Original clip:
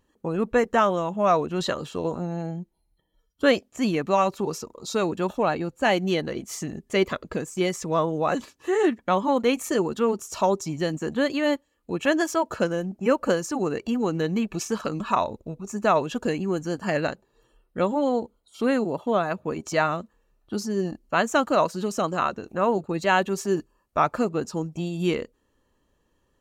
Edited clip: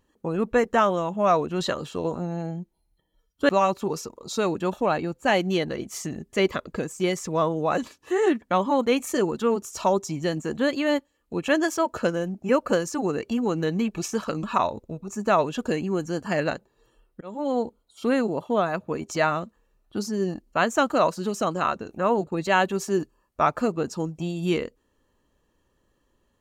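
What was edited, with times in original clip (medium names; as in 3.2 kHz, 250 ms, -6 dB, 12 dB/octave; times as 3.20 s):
3.49–4.06 s: delete
17.78–18.16 s: fade in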